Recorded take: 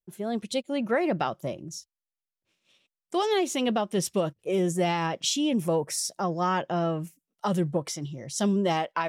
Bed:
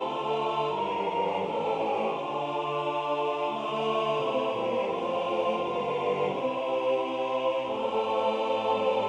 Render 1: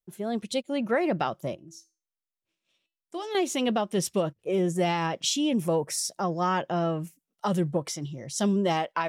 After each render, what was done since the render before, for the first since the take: 1.55–3.35 resonator 330 Hz, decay 0.32 s, mix 70%; 4.22–4.76 high shelf 3900 Hz -6.5 dB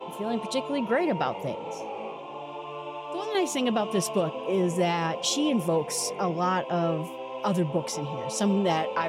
add bed -7.5 dB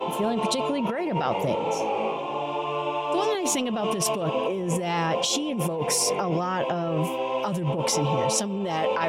in parallel at +1.5 dB: limiter -24 dBFS, peak gain reduction 10.5 dB; on the sum: negative-ratio compressor -25 dBFS, ratio -1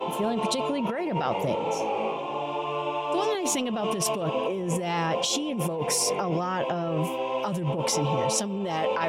gain -1.5 dB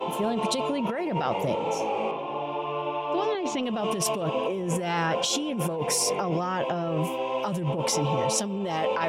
2.11–3.63 air absorption 160 m; 4.69–5.76 bell 1500 Hz +10.5 dB 0.23 oct

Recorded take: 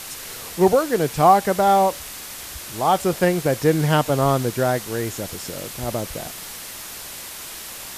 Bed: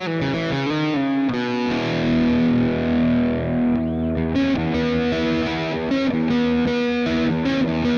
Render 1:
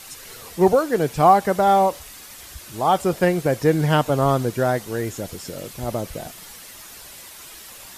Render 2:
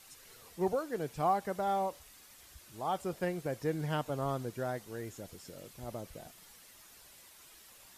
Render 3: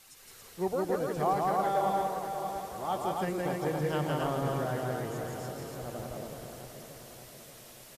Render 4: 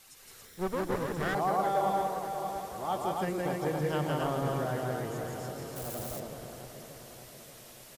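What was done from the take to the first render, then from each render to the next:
denoiser 8 dB, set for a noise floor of -36 dBFS
gain -16 dB
regenerating reverse delay 0.291 s, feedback 74%, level -8.5 dB; loudspeakers at several distances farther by 57 m -2 dB, 95 m -3 dB
0.45–1.35 minimum comb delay 0.54 ms; 5.76–6.2 switching spikes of -33 dBFS

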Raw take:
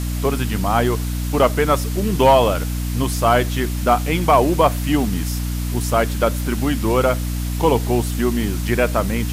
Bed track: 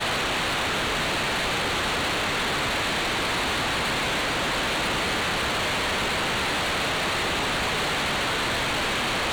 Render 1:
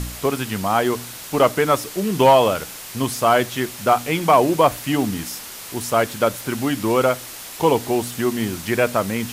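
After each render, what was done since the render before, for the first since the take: de-hum 60 Hz, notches 5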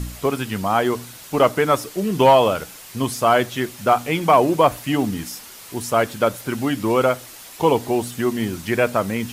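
denoiser 6 dB, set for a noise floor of -36 dBFS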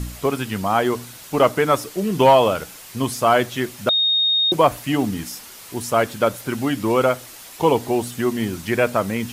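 3.89–4.52 bleep 3710 Hz -15 dBFS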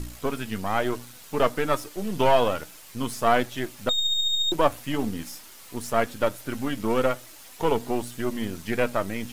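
half-wave gain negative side -7 dB; flange 1.1 Hz, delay 3 ms, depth 1.7 ms, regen +67%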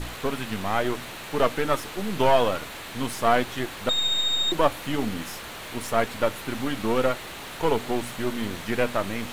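add bed track -13.5 dB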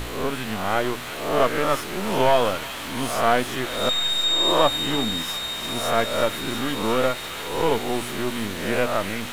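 spectral swells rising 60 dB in 0.76 s; on a send: thin delay 0.348 s, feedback 80%, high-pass 2000 Hz, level -7 dB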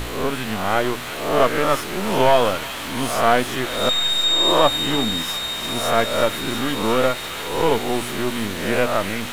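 gain +3 dB; limiter -2 dBFS, peak gain reduction 1 dB

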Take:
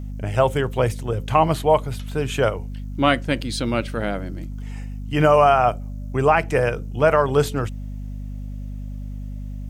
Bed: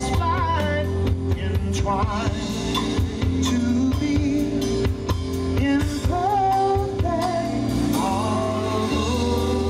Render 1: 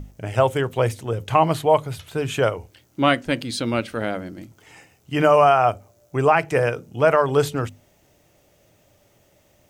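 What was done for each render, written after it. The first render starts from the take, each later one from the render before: notches 50/100/150/200/250 Hz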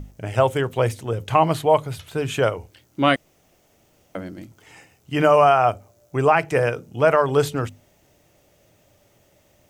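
3.16–4.15 room tone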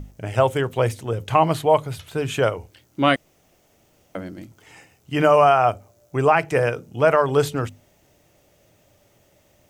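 nothing audible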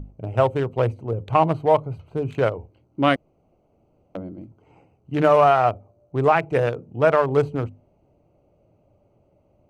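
Wiener smoothing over 25 samples; high shelf 3800 Hz -6.5 dB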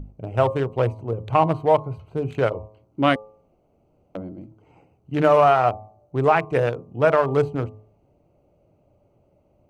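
de-hum 107.2 Hz, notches 11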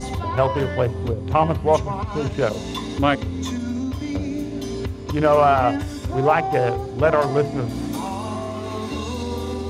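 add bed -5.5 dB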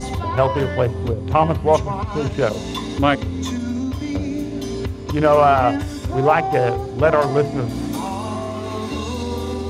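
gain +2 dB

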